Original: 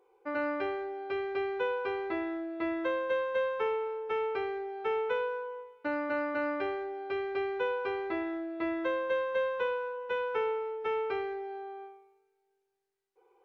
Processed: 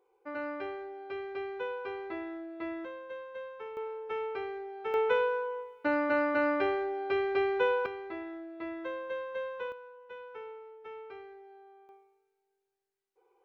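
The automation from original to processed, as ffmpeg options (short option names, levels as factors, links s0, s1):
-af "asetnsamples=n=441:p=0,asendcmd='2.85 volume volume -12dB;3.77 volume volume -3.5dB;4.94 volume volume 4dB;7.86 volume volume -6.5dB;9.72 volume volume -13.5dB;11.89 volume volume -3.5dB',volume=0.562"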